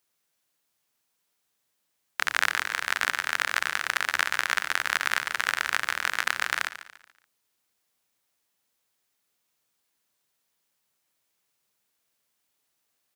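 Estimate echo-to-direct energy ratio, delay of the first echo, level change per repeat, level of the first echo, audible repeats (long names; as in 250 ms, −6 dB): −13.0 dB, 143 ms, −8.0 dB, −13.5 dB, 3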